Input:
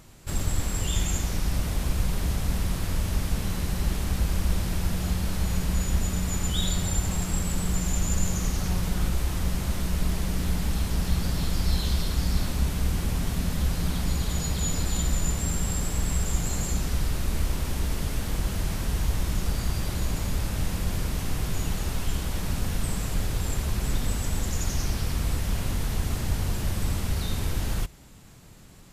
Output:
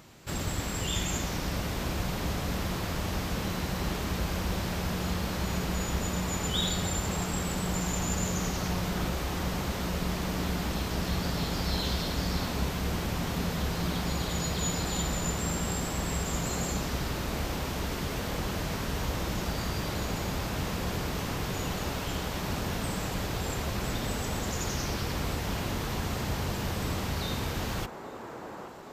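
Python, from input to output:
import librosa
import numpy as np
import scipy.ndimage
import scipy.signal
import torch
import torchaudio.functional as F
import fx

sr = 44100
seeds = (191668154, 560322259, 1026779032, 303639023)

y = fx.highpass(x, sr, hz=180.0, slope=6)
y = fx.peak_eq(y, sr, hz=10000.0, db=-10.5, octaves=0.79)
y = fx.echo_wet_bandpass(y, sr, ms=824, feedback_pct=61, hz=660.0, wet_db=-3.5)
y = y * librosa.db_to_amplitude(2.0)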